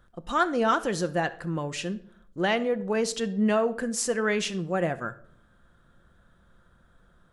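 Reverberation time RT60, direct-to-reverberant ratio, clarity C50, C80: 0.65 s, 11.0 dB, 17.0 dB, 21.0 dB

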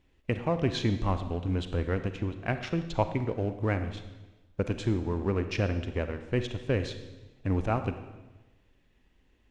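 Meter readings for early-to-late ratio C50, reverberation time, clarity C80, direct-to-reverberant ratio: 9.5 dB, 1.1 s, 11.5 dB, 9.0 dB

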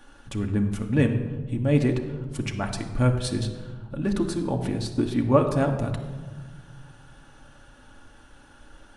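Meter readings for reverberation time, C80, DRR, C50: 1.4 s, 10.0 dB, 2.5 dB, 8.5 dB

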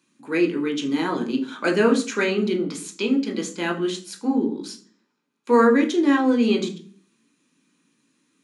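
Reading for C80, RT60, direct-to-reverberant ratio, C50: 17.5 dB, 0.40 s, 2.0 dB, 12.5 dB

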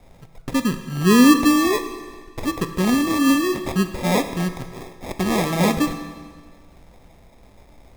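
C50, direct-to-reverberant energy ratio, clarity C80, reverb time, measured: 9.5 dB, 7.5 dB, 11.0 dB, 1.6 s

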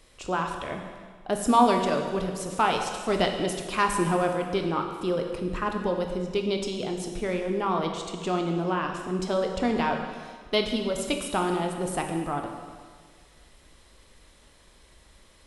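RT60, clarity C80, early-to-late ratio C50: 1.7 s, 6.5 dB, 5.5 dB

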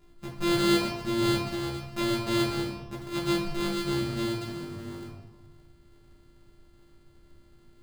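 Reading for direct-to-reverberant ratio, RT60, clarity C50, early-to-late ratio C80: -5.0 dB, 1.2 s, 3.0 dB, 6.5 dB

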